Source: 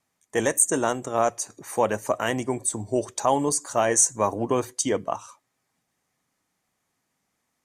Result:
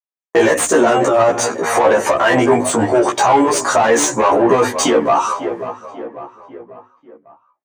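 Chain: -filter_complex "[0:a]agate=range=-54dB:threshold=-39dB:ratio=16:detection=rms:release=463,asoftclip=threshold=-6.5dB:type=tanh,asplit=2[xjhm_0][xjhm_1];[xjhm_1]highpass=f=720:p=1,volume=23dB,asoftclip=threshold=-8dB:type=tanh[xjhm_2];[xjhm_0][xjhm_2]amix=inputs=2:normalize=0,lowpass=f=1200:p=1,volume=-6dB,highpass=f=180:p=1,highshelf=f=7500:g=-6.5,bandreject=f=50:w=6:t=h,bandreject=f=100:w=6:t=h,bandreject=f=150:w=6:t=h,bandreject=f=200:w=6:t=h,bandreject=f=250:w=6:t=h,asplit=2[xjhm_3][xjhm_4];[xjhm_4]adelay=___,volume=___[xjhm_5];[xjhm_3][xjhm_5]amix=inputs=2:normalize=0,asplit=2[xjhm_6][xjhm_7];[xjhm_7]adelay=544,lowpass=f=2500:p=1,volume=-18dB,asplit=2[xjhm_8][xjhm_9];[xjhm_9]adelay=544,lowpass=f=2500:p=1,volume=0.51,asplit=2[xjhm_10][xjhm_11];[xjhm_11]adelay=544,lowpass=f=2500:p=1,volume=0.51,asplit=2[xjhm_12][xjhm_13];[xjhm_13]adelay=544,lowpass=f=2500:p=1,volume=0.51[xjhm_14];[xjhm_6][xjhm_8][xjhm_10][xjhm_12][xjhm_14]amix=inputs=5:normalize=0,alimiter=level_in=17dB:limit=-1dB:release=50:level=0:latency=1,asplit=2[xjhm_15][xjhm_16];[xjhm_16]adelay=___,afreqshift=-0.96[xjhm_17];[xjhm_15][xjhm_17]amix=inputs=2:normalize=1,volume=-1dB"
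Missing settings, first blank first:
17, -2dB, 11.3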